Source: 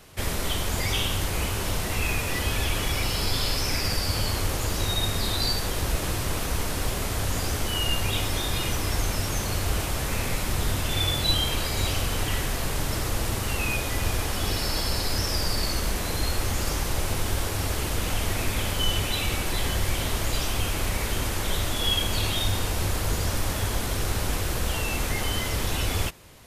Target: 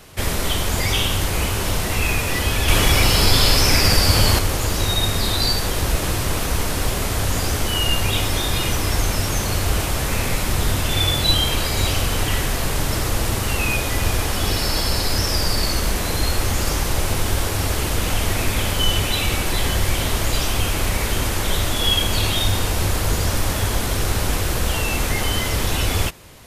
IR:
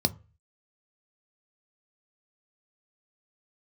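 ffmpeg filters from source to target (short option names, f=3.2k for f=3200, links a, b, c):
-filter_complex "[0:a]asettb=1/sr,asplit=3[a][b][c];[a]atrim=end=2.684[d];[b]atrim=start=2.68:end=4.39,asetpts=PTS-STARTPTS,afade=t=in:d=0.004:c=qsin,afade=t=out:st=1.706:d=0.004:c=qsin,acontrast=24[e];[c]atrim=start=4.386[f];[d][e]acrossfade=d=0.004:c1=hsin:c2=qsin[g];[g][f]acrossfade=d=0.004:c1=qsin:c2=hsin,volume=6dB"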